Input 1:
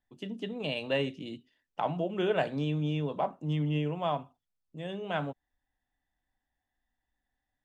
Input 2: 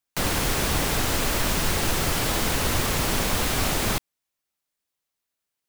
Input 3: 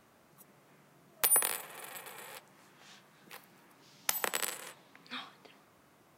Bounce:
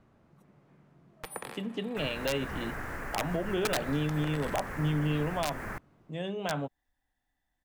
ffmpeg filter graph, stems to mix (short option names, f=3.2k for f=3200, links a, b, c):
-filter_complex "[0:a]aeval=exprs='(mod(9.44*val(0)+1,2)-1)/9.44':c=same,adelay=1350,volume=2.5dB[a];[1:a]highshelf=f=2.5k:t=q:w=3:g=-12.5,adelay=1800,volume=-14dB[b];[2:a]aemphasis=mode=reproduction:type=riaa,volume=-4dB[c];[a][b][c]amix=inputs=3:normalize=0,alimiter=limit=-21dB:level=0:latency=1:release=125"